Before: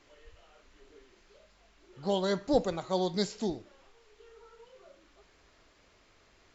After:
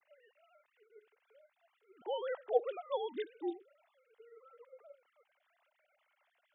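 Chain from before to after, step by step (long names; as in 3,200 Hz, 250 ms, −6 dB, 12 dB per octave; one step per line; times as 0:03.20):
three sine waves on the formant tracks
low-shelf EQ 290 Hz −9 dB
level −4.5 dB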